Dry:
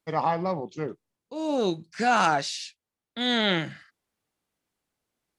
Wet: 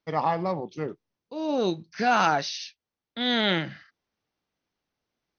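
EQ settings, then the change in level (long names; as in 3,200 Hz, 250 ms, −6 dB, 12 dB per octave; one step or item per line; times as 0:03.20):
linear-phase brick-wall low-pass 6,400 Hz
0.0 dB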